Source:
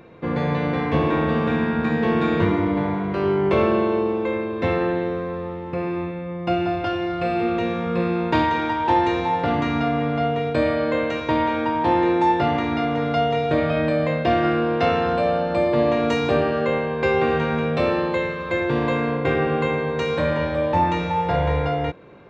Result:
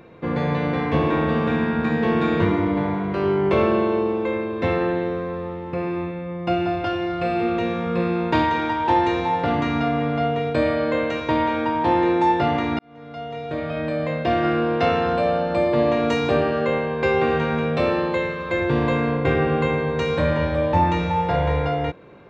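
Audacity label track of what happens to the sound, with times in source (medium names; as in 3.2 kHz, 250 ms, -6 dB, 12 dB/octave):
12.790000	14.600000	fade in
18.580000	21.260000	bass shelf 91 Hz +10.5 dB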